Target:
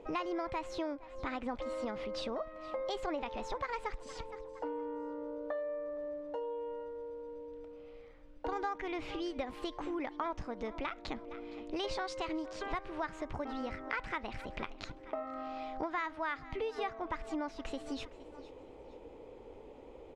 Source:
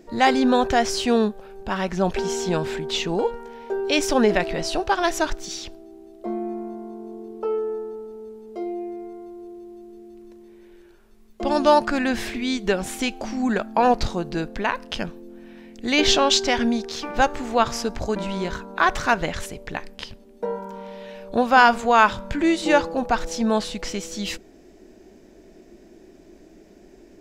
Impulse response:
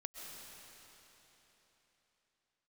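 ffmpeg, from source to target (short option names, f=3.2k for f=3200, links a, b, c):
-af "lowpass=2.2k,aecho=1:1:626|1252:0.0631|0.0221,asetrate=59535,aresample=44100,acompressor=threshold=-34dB:ratio=4,volume=-3dB"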